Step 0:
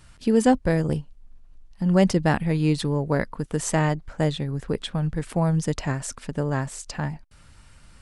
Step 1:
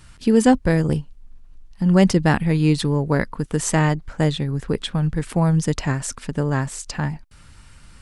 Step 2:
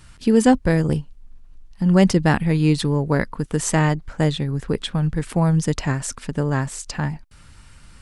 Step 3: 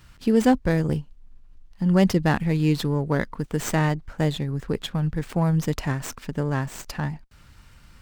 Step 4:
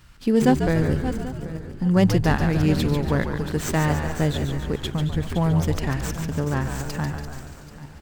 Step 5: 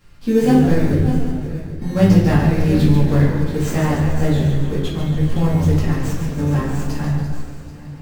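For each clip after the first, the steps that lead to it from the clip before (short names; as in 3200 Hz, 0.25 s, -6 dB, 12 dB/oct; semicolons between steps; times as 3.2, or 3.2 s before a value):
bell 620 Hz -4 dB 0.74 oct; gain +4.5 dB
nothing audible
running maximum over 3 samples; gain -3.5 dB
regenerating reverse delay 0.393 s, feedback 44%, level -10.5 dB; frequency-shifting echo 0.143 s, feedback 59%, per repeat -73 Hz, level -7 dB
in parallel at -9.5 dB: sample-and-hold 22×; on the sum: reverb RT60 0.80 s, pre-delay 4 ms, DRR -7.5 dB; gain -7.5 dB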